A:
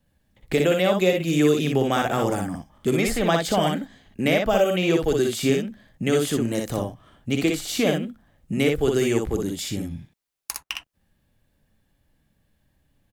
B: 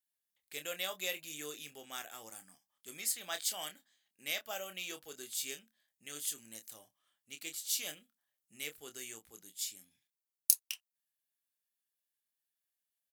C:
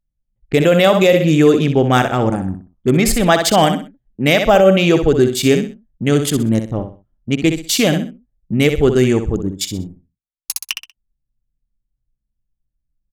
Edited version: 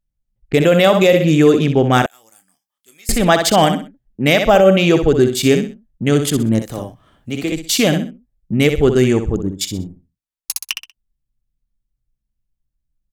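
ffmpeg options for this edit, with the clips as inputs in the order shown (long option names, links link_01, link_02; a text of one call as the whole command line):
ffmpeg -i take0.wav -i take1.wav -i take2.wav -filter_complex "[2:a]asplit=3[link_01][link_02][link_03];[link_01]atrim=end=2.062[link_04];[1:a]atrim=start=2.058:end=3.092[link_05];[link_02]atrim=start=3.088:end=6.622[link_06];[0:a]atrim=start=6.618:end=7.522[link_07];[link_03]atrim=start=7.518[link_08];[link_04][link_05]acrossfade=duration=0.004:curve1=hsin:curve2=hsin[link_09];[link_09][link_06]acrossfade=duration=0.004:curve1=hsin:curve2=hsin[link_10];[link_10][link_07]acrossfade=duration=0.004:curve1=hsin:curve2=hsin[link_11];[link_11][link_08]acrossfade=duration=0.004:curve1=hsin:curve2=hsin" out.wav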